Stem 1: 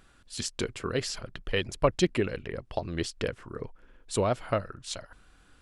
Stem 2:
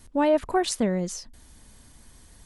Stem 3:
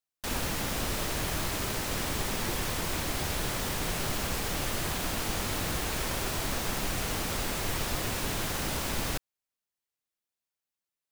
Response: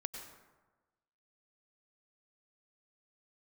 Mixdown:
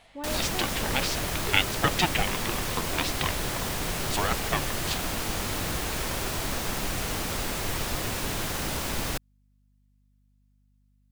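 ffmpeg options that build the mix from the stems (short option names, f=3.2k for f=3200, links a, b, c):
-filter_complex "[0:a]equalizer=f=2.6k:t=o:w=1.6:g=14,aeval=exprs='val(0)*sin(2*PI*540*n/s+540*0.3/1.6*sin(2*PI*1.6*n/s))':c=same,volume=-0.5dB[a];[1:a]volume=-15.5dB[b];[2:a]aeval=exprs='val(0)+0.000562*(sin(2*PI*50*n/s)+sin(2*PI*2*50*n/s)/2+sin(2*PI*3*50*n/s)/3+sin(2*PI*4*50*n/s)/4+sin(2*PI*5*50*n/s)/5)':c=same,volume=1.5dB[c];[a][b][c]amix=inputs=3:normalize=0"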